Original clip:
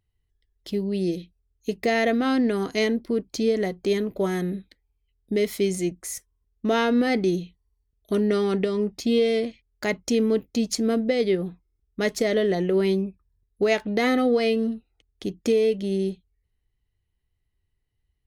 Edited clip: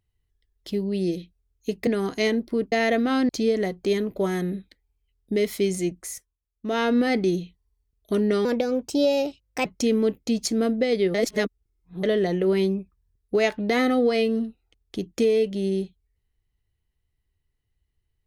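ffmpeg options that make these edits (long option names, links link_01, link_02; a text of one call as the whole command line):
ffmpeg -i in.wav -filter_complex "[0:a]asplit=10[link_01][link_02][link_03][link_04][link_05][link_06][link_07][link_08][link_09][link_10];[link_01]atrim=end=1.872[link_11];[link_02]atrim=start=2.438:end=3.292[link_12];[link_03]atrim=start=1.868:end=2.442[link_13];[link_04]atrim=start=3.288:end=6.37,asetpts=PTS-STARTPTS,afade=type=out:start_time=2.732:duration=0.35:silence=0.177828[link_14];[link_05]atrim=start=6.37:end=6.53,asetpts=PTS-STARTPTS,volume=-15dB[link_15];[link_06]atrim=start=6.53:end=8.454,asetpts=PTS-STARTPTS,afade=type=in:duration=0.35:silence=0.177828[link_16];[link_07]atrim=start=8.45:end=9.93,asetpts=PTS-STARTPTS,asetrate=54243,aresample=44100,atrim=end_sample=53063,asetpts=PTS-STARTPTS[link_17];[link_08]atrim=start=9.926:end=11.422[link_18];[link_09]atrim=start=11.418:end=12.312,asetpts=PTS-STARTPTS,areverse[link_19];[link_10]atrim=start=12.308[link_20];[link_11][link_12]acrossfade=duration=0.004:curve1=hsin:curve2=hsin[link_21];[link_21][link_13]acrossfade=duration=0.004:curve1=hsin:curve2=hsin[link_22];[link_14][link_15][link_16]concat=n=3:v=0:a=1[link_23];[link_22][link_23]acrossfade=duration=0.004:curve1=hsin:curve2=hsin[link_24];[link_24][link_17]acrossfade=duration=0.004:curve1=hsin:curve2=hsin[link_25];[link_25][link_18]acrossfade=duration=0.004:curve1=hsin:curve2=hsin[link_26];[link_26][link_19]acrossfade=duration=0.004:curve1=hsin:curve2=hsin[link_27];[link_27][link_20]acrossfade=duration=0.004:curve1=hsin:curve2=hsin" out.wav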